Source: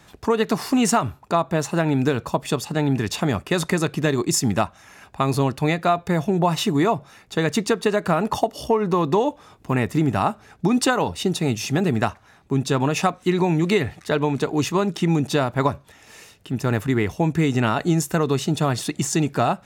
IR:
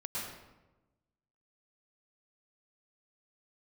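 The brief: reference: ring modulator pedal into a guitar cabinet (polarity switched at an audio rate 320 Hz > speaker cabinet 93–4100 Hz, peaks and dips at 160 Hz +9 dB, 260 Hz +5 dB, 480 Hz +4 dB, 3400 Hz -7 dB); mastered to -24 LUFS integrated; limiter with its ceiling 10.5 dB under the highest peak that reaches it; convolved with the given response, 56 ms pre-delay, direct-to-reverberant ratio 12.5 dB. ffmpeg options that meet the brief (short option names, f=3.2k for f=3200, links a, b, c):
-filter_complex "[0:a]alimiter=limit=-16dB:level=0:latency=1,asplit=2[a][b];[1:a]atrim=start_sample=2205,adelay=56[c];[b][c]afir=irnorm=-1:irlink=0,volume=-15dB[d];[a][d]amix=inputs=2:normalize=0,aeval=exprs='val(0)*sgn(sin(2*PI*320*n/s))':c=same,highpass=93,equalizer=f=160:t=q:w=4:g=9,equalizer=f=260:t=q:w=4:g=5,equalizer=f=480:t=q:w=4:g=4,equalizer=f=3.4k:t=q:w=4:g=-7,lowpass=f=4.1k:w=0.5412,lowpass=f=4.1k:w=1.3066,volume=0.5dB"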